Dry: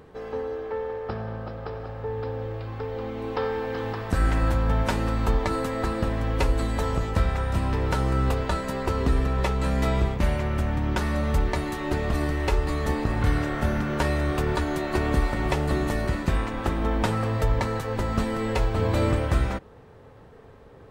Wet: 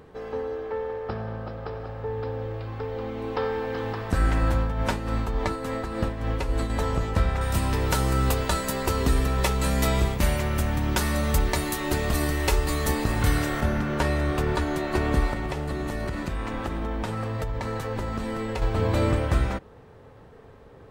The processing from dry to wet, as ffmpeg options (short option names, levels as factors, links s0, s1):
-filter_complex "[0:a]asettb=1/sr,asplit=3[s0][s1][s2];[s0]atrim=end=4.594[s3];[s1]atrim=start=4.59:end=6.7,asetpts=PTS-STARTPTS,afade=t=in:d=0.004:c=qsin,afade=t=out:st=2.106:d=0.004:c=qsin,tremolo=f=3.5:d=0.55[s4];[s2]atrim=start=6.696[s5];[s3][s4]acrossfade=d=0.004:c1=hsin:c2=qsin[s6];[s6][s5]acrossfade=d=0.004:c1=qsin:c2=hsin,asettb=1/sr,asplit=3[s7][s8][s9];[s7]atrim=end=7.414[s10];[s8]atrim=start=7.41:end=13.61,asetpts=PTS-STARTPTS,afade=t=in:d=0.004:c=qsin,afade=t=out:st=6.196:d=0.004:c=qsin,aemphasis=mode=production:type=75kf[s11];[s9]atrim=start=13.606[s12];[s10][s11]acrossfade=d=0.004:c1=hsin:c2=qsin[s13];[s13][s12]acrossfade=d=0.004:c1=qsin:c2=hsin,asettb=1/sr,asplit=3[s14][s15][s16];[s14]atrim=end=15.334[s17];[s15]atrim=start=15.33:end=18.62,asetpts=PTS-STARTPTS,afade=t=in:d=0.004:c=qsin,afade=t=out:st=3.286:d=0.004:c=qsin,acompressor=threshold=0.0562:ratio=6:attack=3.2:release=140:knee=1:detection=peak[s18];[s16]atrim=start=18.616[s19];[s17][s18]acrossfade=d=0.004:c1=hsin:c2=qsin[s20];[s20][s19]acrossfade=d=0.004:c1=qsin:c2=hsin"